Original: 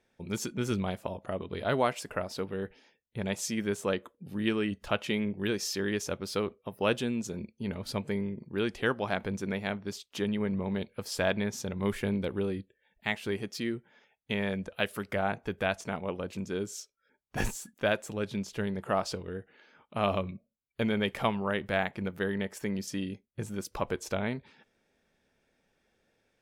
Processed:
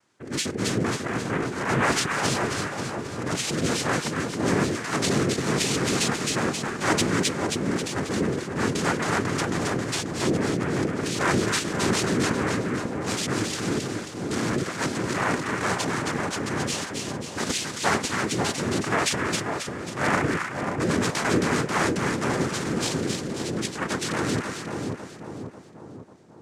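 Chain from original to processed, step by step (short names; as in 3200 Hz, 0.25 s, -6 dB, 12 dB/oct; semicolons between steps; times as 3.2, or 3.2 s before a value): transient shaper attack -4 dB, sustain +11 dB; noise vocoder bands 3; split-band echo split 1000 Hz, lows 0.543 s, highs 0.269 s, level -4 dB; gain +5 dB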